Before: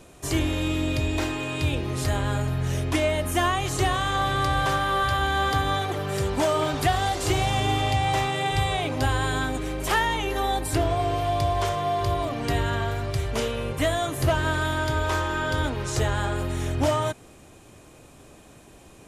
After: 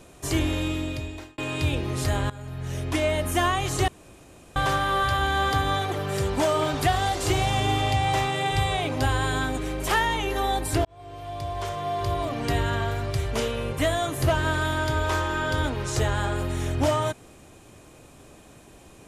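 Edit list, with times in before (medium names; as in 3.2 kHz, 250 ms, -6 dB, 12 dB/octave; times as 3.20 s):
0.54–1.38 s: fade out linear
2.30–3.12 s: fade in, from -18.5 dB
3.88–4.56 s: room tone
10.85–12.38 s: fade in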